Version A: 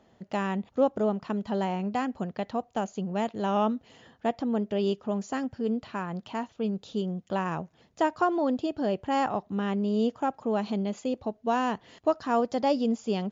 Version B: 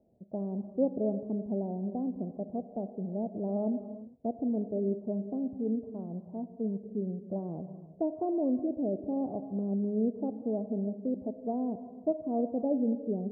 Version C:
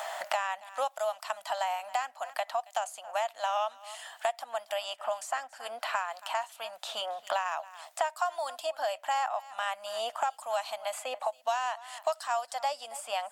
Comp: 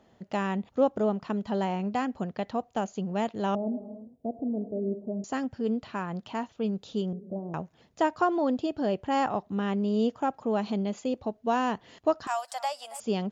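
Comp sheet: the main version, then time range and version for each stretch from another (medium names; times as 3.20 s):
A
3.55–5.24 s: from B
7.13–7.54 s: from B
12.27–13.00 s: from C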